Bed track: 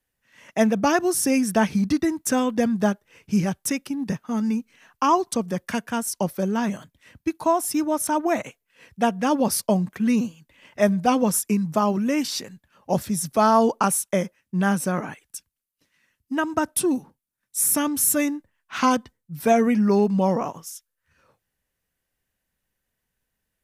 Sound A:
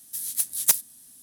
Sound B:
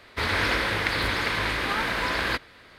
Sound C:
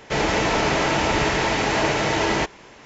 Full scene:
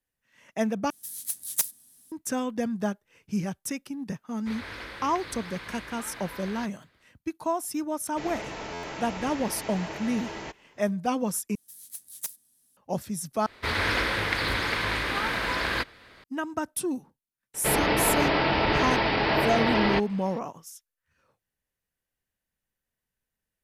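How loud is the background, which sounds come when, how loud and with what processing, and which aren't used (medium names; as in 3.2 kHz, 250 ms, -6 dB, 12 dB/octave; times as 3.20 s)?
bed track -7.5 dB
0.90 s: replace with A -6.5 dB
4.29 s: add B -15.5 dB
8.06 s: add C -16.5 dB + buffer glitch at 0.67 s
11.55 s: replace with A -15.5 dB
13.46 s: replace with B -1.5 dB
17.54 s: add C -3 dB + resampled via 11.025 kHz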